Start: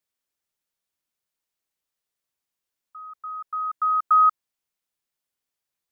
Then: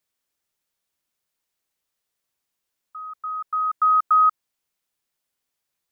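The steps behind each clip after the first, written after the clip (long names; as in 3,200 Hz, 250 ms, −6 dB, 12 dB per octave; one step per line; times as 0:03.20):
brickwall limiter −16.5 dBFS, peak gain reduction 4.5 dB
level +4.5 dB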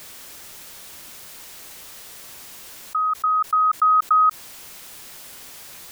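envelope flattener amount 70%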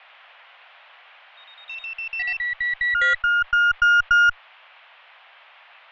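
delay with pitch and tempo change per echo 110 ms, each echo +6 semitones, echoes 3, each echo −6 dB
single-sideband voice off tune +160 Hz 480–2,900 Hz
harmonic generator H 4 −20 dB, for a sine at −8.5 dBFS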